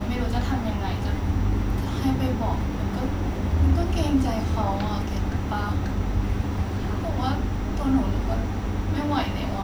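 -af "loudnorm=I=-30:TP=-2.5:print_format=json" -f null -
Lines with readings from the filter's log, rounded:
"input_i" : "-25.9",
"input_tp" : "-9.4",
"input_lra" : "1.8",
"input_thresh" : "-35.9",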